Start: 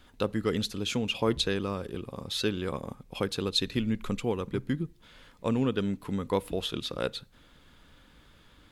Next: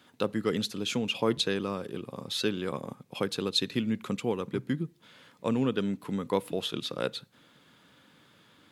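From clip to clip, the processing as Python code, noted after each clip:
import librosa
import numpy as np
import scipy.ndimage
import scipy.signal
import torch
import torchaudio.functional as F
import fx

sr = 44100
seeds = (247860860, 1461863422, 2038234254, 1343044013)

y = scipy.signal.sosfilt(scipy.signal.butter(4, 120.0, 'highpass', fs=sr, output='sos'), x)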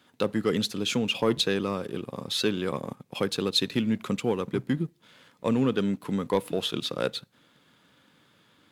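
y = fx.leveller(x, sr, passes=1)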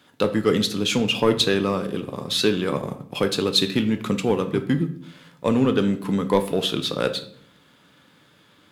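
y = fx.room_shoebox(x, sr, seeds[0], volume_m3=88.0, walls='mixed', distance_m=0.34)
y = F.gain(torch.from_numpy(y), 5.0).numpy()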